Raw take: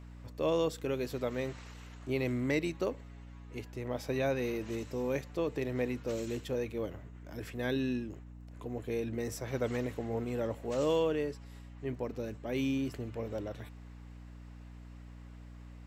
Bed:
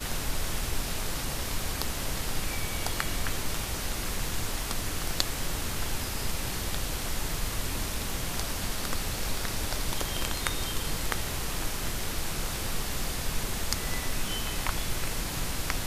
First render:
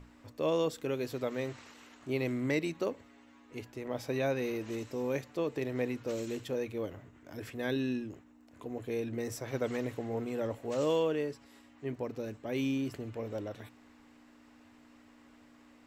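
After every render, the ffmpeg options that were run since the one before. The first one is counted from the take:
-af "bandreject=f=60:t=h:w=6,bandreject=f=120:t=h:w=6,bandreject=f=180:t=h:w=6"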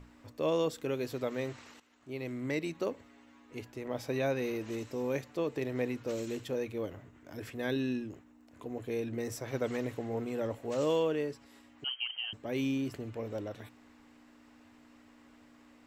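-filter_complex "[0:a]asettb=1/sr,asplit=3[s0][s1][s2];[s0]atrim=end=11.844[s3];[s1]atrim=start=11.84:end=12.33,asetpts=PTS-STARTPTS,afade=t=in:d=0.004:c=qsin,afade=t=out:st=0.486:d=0.004:c=qsin,lowpass=f=2800:t=q:w=0.5098,lowpass=f=2800:t=q:w=0.6013,lowpass=f=2800:t=q:w=0.9,lowpass=f=2800:t=q:w=2.563,afreqshift=-3300[s4];[s2]atrim=start=12.326[s5];[s3][s4]acrossfade=d=0.004:c1=hsin:c2=qsin[s6];[s6][s5]acrossfade=d=0.004:c1=qsin:c2=hsin,asplit=2[s7][s8];[s7]atrim=end=1.8,asetpts=PTS-STARTPTS,afade=t=out:st=1.796:d=0.004:c=hsin:silence=0.177828[s9];[s8]atrim=start=1.8,asetpts=PTS-STARTPTS,afade=t=in:d=1.14:silence=0.177828[s10];[s9][s10]concat=n=2:v=0:a=1"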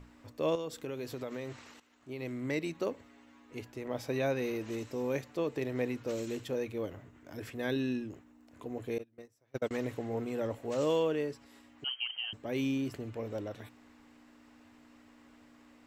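-filter_complex "[0:a]asettb=1/sr,asplit=3[s0][s1][s2];[s0]atrim=end=0.554[s3];[s1]atrim=start=0.55:end=2.22,asetpts=PTS-STARTPTS,afade=t=in:d=0.004:c=qsin,afade=t=out:st=1.666:d=0.004:c=qsin,acompressor=threshold=0.0178:ratio=4:attack=3.2:release=140:knee=1:detection=peak[s4];[s2]atrim=start=2.216[s5];[s3][s4]acrossfade=d=0.004:c1=hsin:c2=qsin[s6];[s6][s5]acrossfade=d=0.004:c1=qsin:c2=hsin,asettb=1/sr,asplit=3[s7][s8][s9];[s7]atrim=end=8.984[s10];[s8]atrim=start=8.98:end=9.71,asetpts=PTS-STARTPTS,afade=t=in:d=0.004:c=qsin,afade=t=out:st=0.726:d=0.004:c=qsin,agate=range=0.0251:threshold=0.0224:ratio=16:release=100:detection=peak[s11];[s9]atrim=start=9.706[s12];[s10][s11]acrossfade=d=0.004:c1=hsin:c2=qsin[s13];[s13][s12]acrossfade=d=0.004:c1=qsin:c2=hsin"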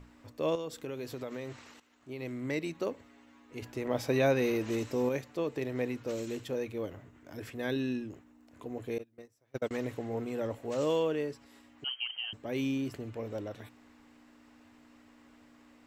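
-filter_complex "[0:a]asettb=1/sr,asplit=3[s0][s1][s2];[s0]atrim=end=3.624[s3];[s1]atrim=start=3.62:end=5.09,asetpts=PTS-STARTPTS,afade=t=in:d=0.004:c=qsin,afade=t=out:st=1.466:d=0.004:c=qsin,acontrast=29[s4];[s2]atrim=start=5.086[s5];[s3][s4]acrossfade=d=0.004:c1=hsin:c2=qsin[s6];[s6][s5]acrossfade=d=0.004:c1=qsin:c2=hsin"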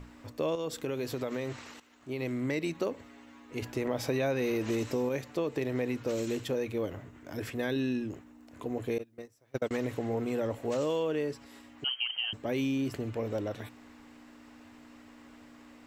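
-filter_complex "[0:a]asplit=2[s0][s1];[s1]alimiter=level_in=1.26:limit=0.0631:level=0:latency=1,volume=0.794,volume=0.944[s2];[s0][s2]amix=inputs=2:normalize=0,acompressor=threshold=0.0398:ratio=3"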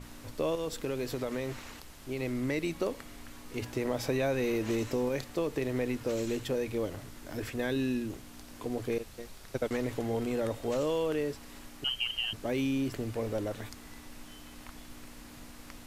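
-filter_complex "[1:a]volume=0.112[s0];[0:a][s0]amix=inputs=2:normalize=0"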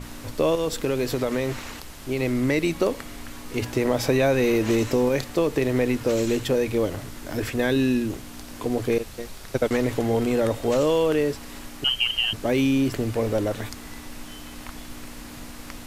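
-af "volume=2.99"

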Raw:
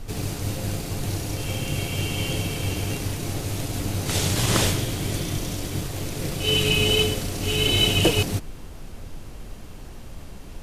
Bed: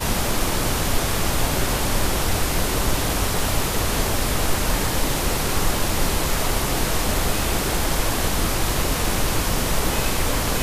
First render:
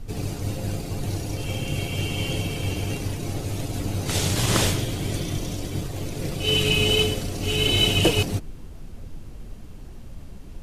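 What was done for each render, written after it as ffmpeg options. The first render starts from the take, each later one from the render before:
-af "afftdn=nr=7:nf=-39"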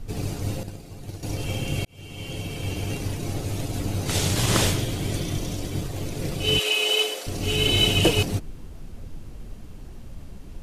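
-filter_complex "[0:a]asettb=1/sr,asplit=3[s0][s1][s2];[s0]atrim=end=0.634[s3];[s1]atrim=start=0.63:end=1.23,asetpts=PTS-STARTPTS,afade=t=in:d=0.004:c=qsin,afade=t=out:st=0.596:d=0.004:c=qsin,agate=range=0.282:threshold=0.0562:ratio=16:release=100:detection=peak[s4];[s2]atrim=start=1.226[s5];[s3][s4]acrossfade=d=0.004:c1=hsin:c2=qsin[s6];[s6][s5]acrossfade=d=0.004:c1=qsin:c2=hsin,asettb=1/sr,asplit=3[s7][s8][s9];[s7]atrim=end=6.594[s10];[s8]atrim=start=6.59:end=7.27,asetpts=PTS-STARTPTS,afade=t=in:d=0.004:c=qsin,afade=t=out:st=0.676:d=0.004:c=qsin,highpass=f=450:w=0.5412,highpass=f=450:w=1.3066[s11];[s9]atrim=start=7.266[s12];[s10][s11]acrossfade=d=0.004:c1=hsin:c2=qsin[s13];[s13][s12]acrossfade=d=0.004:c1=qsin:c2=hsin,asplit=2[s14][s15];[s14]atrim=end=1.85,asetpts=PTS-STARTPTS,afade=t=out:st=1.846:d=0.004:c=hsin[s16];[s15]atrim=start=1.85,asetpts=PTS-STARTPTS,afade=t=in:d=1.55:c=qsin[s17];[s16][s17]concat=n=2:v=0:a=1"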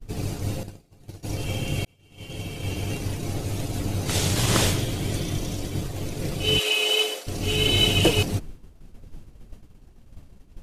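-af "agate=range=0.0224:threshold=0.0355:ratio=3:detection=peak"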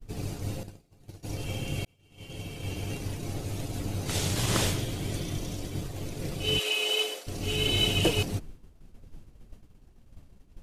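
-af "volume=0.531"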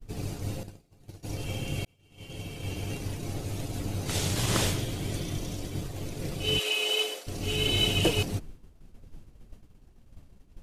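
-af anull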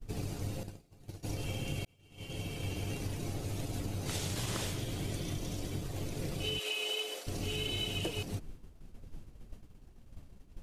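-af "acompressor=threshold=0.0224:ratio=6"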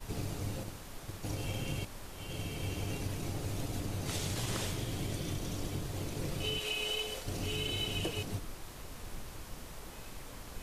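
-filter_complex "[1:a]volume=0.0501[s0];[0:a][s0]amix=inputs=2:normalize=0"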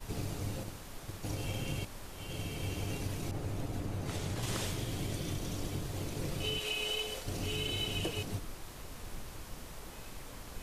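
-filter_complex "[0:a]asettb=1/sr,asplit=3[s0][s1][s2];[s0]atrim=end=3.314[s3];[s1]atrim=start=3.31:end=4.43,asetpts=PTS-STARTPTS,afade=t=in:d=0.004:c=qsin,afade=t=out:st=1.116:d=0.004:c=qsin,adynamicequalizer=threshold=0.00158:dfrequency=2400:dqfactor=0.7:tfrequency=2400:tqfactor=0.7:attack=5:release=100:ratio=0.375:range=3.5:mode=cutabove:tftype=highshelf[s4];[s2]atrim=start=4.426[s5];[s3][s4]acrossfade=d=0.004:c1=hsin:c2=qsin[s6];[s6][s5]acrossfade=d=0.004:c1=qsin:c2=hsin"

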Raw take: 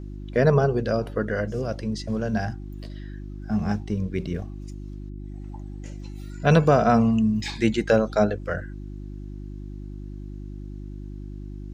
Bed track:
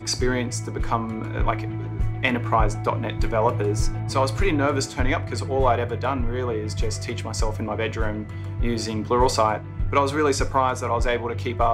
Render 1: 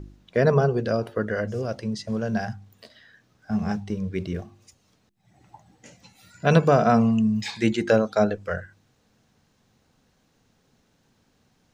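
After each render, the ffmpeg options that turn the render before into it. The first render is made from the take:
-af "bandreject=f=50:t=h:w=4,bandreject=f=100:t=h:w=4,bandreject=f=150:t=h:w=4,bandreject=f=200:t=h:w=4,bandreject=f=250:t=h:w=4,bandreject=f=300:t=h:w=4,bandreject=f=350:t=h:w=4"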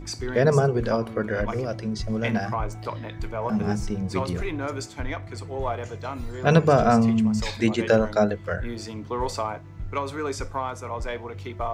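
-filter_complex "[1:a]volume=0.376[s0];[0:a][s0]amix=inputs=2:normalize=0"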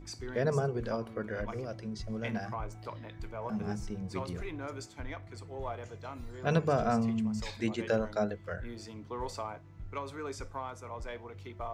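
-af "volume=0.299"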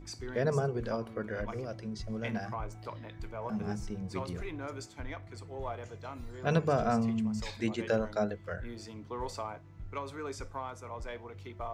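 -af anull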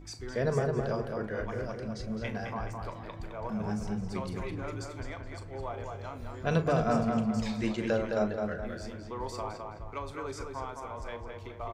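-filter_complex "[0:a]asplit=2[s0][s1];[s1]adelay=38,volume=0.251[s2];[s0][s2]amix=inputs=2:normalize=0,asplit=2[s3][s4];[s4]adelay=212,lowpass=f=3300:p=1,volume=0.631,asplit=2[s5][s6];[s6]adelay=212,lowpass=f=3300:p=1,volume=0.44,asplit=2[s7][s8];[s8]adelay=212,lowpass=f=3300:p=1,volume=0.44,asplit=2[s9][s10];[s10]adelay=212,lowpass=f=3300:p=1,volume=0.44,asplit=2[s11][s12];[s12]adelay=212,lowpass=f=3300:p=1,volume=0.44,asplit=2[s13][s14];[s14]adelay=212,lowpass=f=3300:p=1,volume=0.44[s15];[s3][s5][s7][s9][s11][s13][s15]amix=inputs=7:normalize=0"

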